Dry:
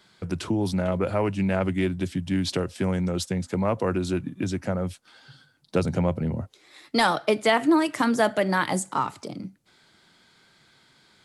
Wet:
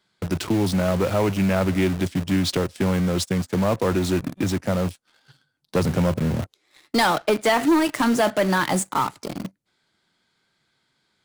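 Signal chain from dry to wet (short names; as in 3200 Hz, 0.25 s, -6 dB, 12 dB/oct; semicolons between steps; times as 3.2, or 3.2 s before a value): sample leveller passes 2; in parallel at -4 dB: bit-crush 4-bit; on the sum: gain -7 dB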